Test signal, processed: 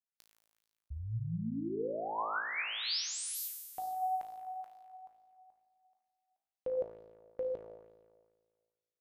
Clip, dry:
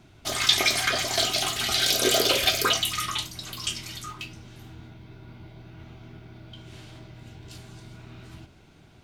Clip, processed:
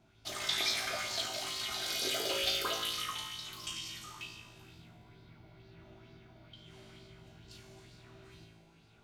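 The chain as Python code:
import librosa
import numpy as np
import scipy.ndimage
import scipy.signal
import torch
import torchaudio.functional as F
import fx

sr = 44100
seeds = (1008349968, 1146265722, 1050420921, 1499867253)

y = fx.rider(x, sr, range_db=3, speed_s=2.0)
y = fx.comb_fb(y, sr, f0_hz=55.0, decay_s=1.6, harmonics='all', damping=0.0, mix_pct=90)
y = fx.bell_lfo(y, sr, hz=2.2, low_hz=600.0, high_hz=4800.0, db=7)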